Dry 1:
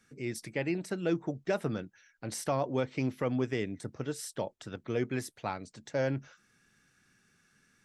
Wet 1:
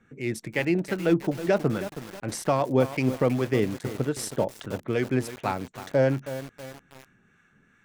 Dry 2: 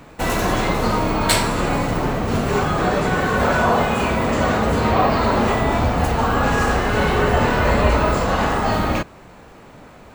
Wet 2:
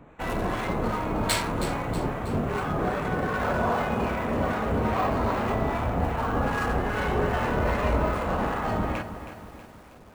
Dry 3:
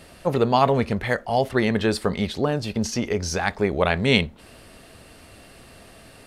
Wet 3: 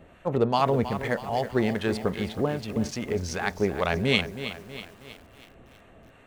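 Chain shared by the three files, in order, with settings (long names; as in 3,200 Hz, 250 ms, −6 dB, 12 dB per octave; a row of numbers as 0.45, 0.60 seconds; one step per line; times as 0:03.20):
adaptive Wiener filter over 9 samples
two-band tremolo in antiphase 2.5 Hz, depth 50%, crossover 890 Hz
feedback echo at a low word length 320 ms, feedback 55%, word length 7 bits, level −11 dB
loudness normalisation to −27 LKFS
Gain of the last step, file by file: +10.0, −6.0, −2.0 decibels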